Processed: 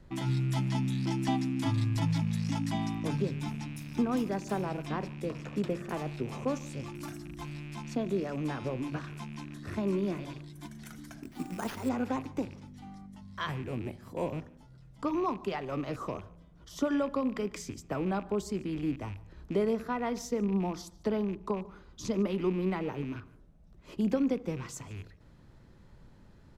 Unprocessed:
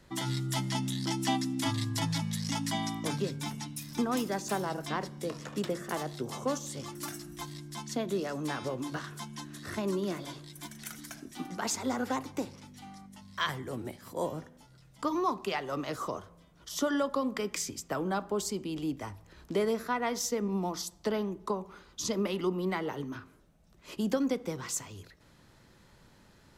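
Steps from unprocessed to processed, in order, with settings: rattle on loud lows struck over -45 dBFS, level -34 dBFS; tilt EQ -2.5 dB/octave; 11.23–11.89 s: sample-rate reducer 7.9 kHz, jitter 0%; on a send: delay 147 ms -23 dB; on the sum: trim -3 dB

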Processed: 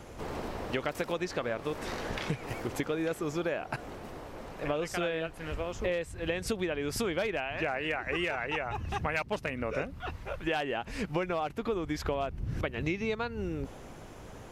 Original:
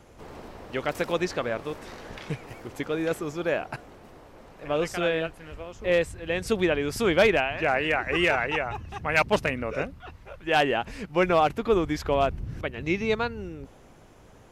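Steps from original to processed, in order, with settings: compression 12:1, threshold -34 dBFS, peak gain reduction 19 dB; trim +5.5 dB

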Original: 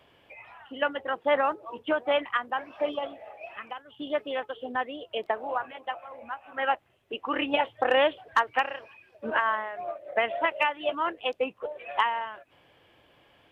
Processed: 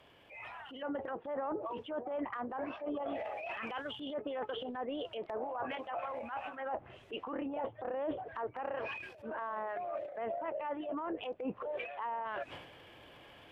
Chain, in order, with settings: low-pass that closes with the level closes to 880 Hz, closed at -25.5 dBFS; level rider gain up to 6.5 dB; transient shaper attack -7 dB, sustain +10 dB; reverse; compression 5:1, threshold -35 dBFS, peak gain reduction 18 dB; reverse; trim -2 dB

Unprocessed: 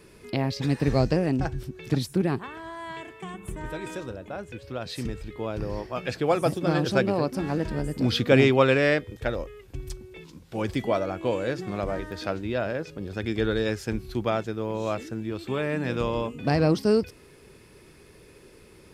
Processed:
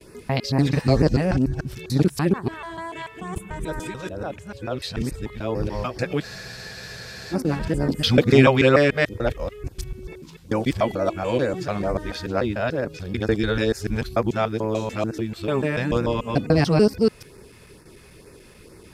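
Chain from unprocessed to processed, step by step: time reversed locally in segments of 146 ms; gate with hold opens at -43 dBFS; LFO notch sine 2.2 Hz 290–3300 Hz; spectral freeze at 6.24 s, 1.08 s; trim +5.5 dB

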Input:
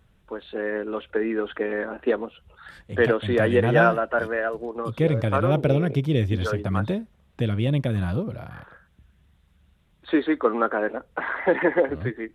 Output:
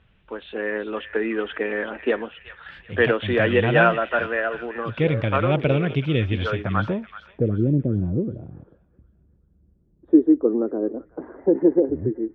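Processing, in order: low-pass sweep 2.8 kHz -> 350 Hz, 6.47–7.59 s; feedback echo behind a high-pass 379 ms, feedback 35%, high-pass 1.7 kHz, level -9 dB

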